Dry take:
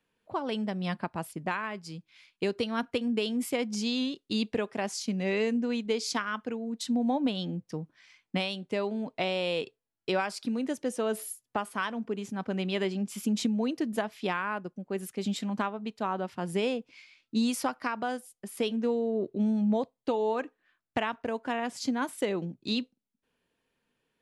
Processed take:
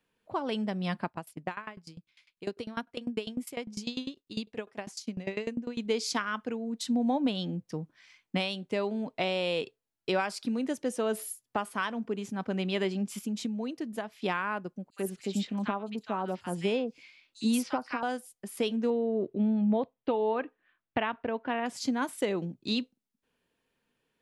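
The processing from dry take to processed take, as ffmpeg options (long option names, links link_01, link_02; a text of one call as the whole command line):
ffmpeg -i in.wav -filter_complex "[0:a]asettb=1/sr,asplit=3[link_01][link_02][link_03];[link_01]atrim=end=1.074[link_04];[link_02]atrim=start=1.07:end=5.78,asetpts=PTS-STARTPTS,afade=type=in:duration=0.004:curve=qsin,afade=type=out:start_time=4.706:duration=0.004:curve=qsin,aeval=exprs='val(0)*pow(10,-21*if(lt(mod(10*n/s,1),2*abs(10)/1000),1-mod(10*n/s,1)/(2*abs(10)/1000),(mod(10*n/s,1)-2*abs(10)/1000)/(1-2*abs(10)/1000))/20)':channel_layout=same[link_05];[link_03]atrim=start=5.776[link_06];[link_04][link_05]acrossfade=duration=0.004:curve1=hsin:curve2=qsin[link_07];[link_07][link_06]acrossfade=duration=0.004:curve1=qsin:curve2=hsin,asettb=1/sr,asplit=3[link_08][link_09][link_10];[link_08]atrim=end=14.904[link_11];[link_09]atrim=start=14.9:end=18.03,asetpts=PTS-STARTPTS,afade=type=in:duration=0.004:curve=qsin,afade=type=out:start_time=3.126:duration=0.004:curve=qsin,acrossover=split=1300|5500[link_12][link_13][link_14];[link_13]adelay=60[link_15];[link_12]adelay=90[link_16];[link_16][link_15][link_14]amix=inputs=3:normalize=0,atrim=end_sample=138033[link_17];[link_10]atrim=start=18.026[link_18];[link_11][link_17]acrossfade=duration=0.004:curve1=hsin:curve2=qsin[link_19];[link_19][link_18]acrossfade=duration=0.004:curve1=qsin:curve2=hsin,asettb=1/sr,asplit=3[link_20][link_21][link_22];[link_20]atrim=end=18.904[link_23];[link_21]atrim=start=18.9:end=21.66,asetpts=PTS-STARTPTS,afade=type=in:duration=0.004:curve=qsin,afade=type=out:start_time=2.756:duration=0.004:curve=qsin,lowpass=frequency=3500:width=0.5412,lowpass=frequency=3500:width=1.3066[link_24];[link_22]atrim=start=21.656[link_25];[link_23][link_24]acrossfade=duration=0.004:curve1=hsin:curve2=qsin[link_26];[link_26][link_25]acrossfade=duration=0.004:curve1=qsin:curve2=hsin,asplit=3[link_27][link_28][link_29];[link_27]atrim=end=13.192[link_30];[link_28]atrim=start=13.188:end=14.222,asetpts=PTS-STARTPTS,volume=-5.5dB[link_31];[link_29]atrim=start=14.218[link_32];[link_30][link_31]acrossfade=duration=0.004:curve1=hsin:curve2=hsin[link_33];[link_33][link_32]acrossfade=duration=0.004:curve1=hsin:curve2=hsin" out.wav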